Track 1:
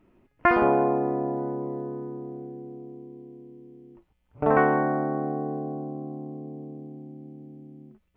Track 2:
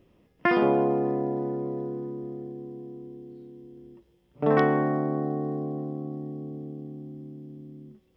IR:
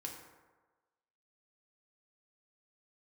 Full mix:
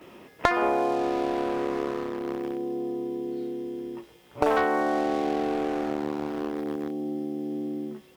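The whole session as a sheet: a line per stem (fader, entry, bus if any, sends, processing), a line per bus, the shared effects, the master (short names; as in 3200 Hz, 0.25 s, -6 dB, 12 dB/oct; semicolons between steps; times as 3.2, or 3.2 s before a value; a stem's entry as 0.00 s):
+1.5 dB, 0.00 s, send -16 dB, upward expander 1.5:1, over -39 dBFS
-8.0 dB, 13 ms, no send, dry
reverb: on, RT60 1.3 s, pre-delay 3 ms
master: HPF 640 Hz 6 dB/oct; sample leveller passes 2; three-band squash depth 100%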